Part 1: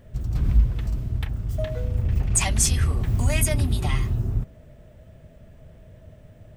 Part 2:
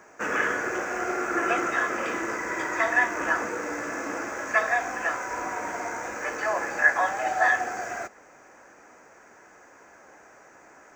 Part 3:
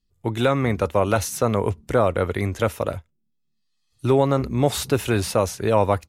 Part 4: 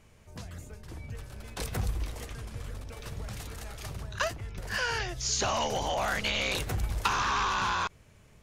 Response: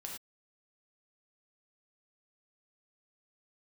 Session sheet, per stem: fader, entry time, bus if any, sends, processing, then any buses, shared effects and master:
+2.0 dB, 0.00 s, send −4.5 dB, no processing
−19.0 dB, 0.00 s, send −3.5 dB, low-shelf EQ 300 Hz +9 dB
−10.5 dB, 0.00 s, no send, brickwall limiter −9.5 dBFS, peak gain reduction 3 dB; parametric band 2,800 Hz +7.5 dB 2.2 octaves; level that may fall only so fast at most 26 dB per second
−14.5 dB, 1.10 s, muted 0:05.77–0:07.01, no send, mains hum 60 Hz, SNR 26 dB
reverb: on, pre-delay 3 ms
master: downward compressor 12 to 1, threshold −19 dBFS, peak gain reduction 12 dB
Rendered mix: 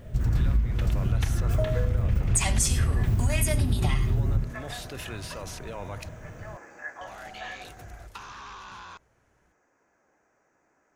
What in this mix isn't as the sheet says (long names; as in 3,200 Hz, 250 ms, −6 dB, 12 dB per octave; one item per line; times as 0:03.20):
stem 2: send off
stem 3 −10.5 dB → −20.5 dB